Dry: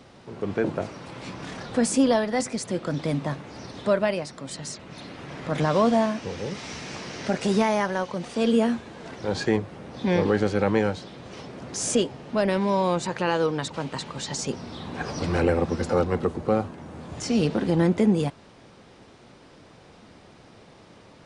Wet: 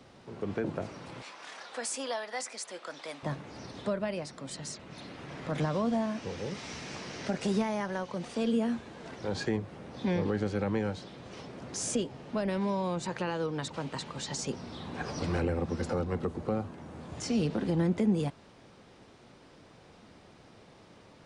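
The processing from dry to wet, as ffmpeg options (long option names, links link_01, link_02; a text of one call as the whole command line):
ffmpeg -i in.wav -filter_complex "[0:a]asettb=1/sr,asplit=3[link_01][link_02][link_03];[link_01]atrim=end=1.224[link_04];[link_02]atrim=start=1.22:end=3.23,asetpts=PTS-STARTPTS,afade=type=in:duration=0.004:curve=qsin,afade=type=out:start_time=2.006:duration=0.004:curve=qsin,highpass=760[link_05];[link_03]atrim=start=3.226[link_06];[link_04][link_05]acrossfade=duration=0.004:curve1=hsin:curve2=qsin[link_07];[link_07][link_06]acrossfade=duration=0.004:curve1=qsin:curve2=hsin,acrossover=split=250[link_08][link_09];[link_09]acompressor=threshold=-26dB:ratio=4[link_10];[link_08][link_10]amix=inputs=2:normalize=0,volume=-5dB" out.wav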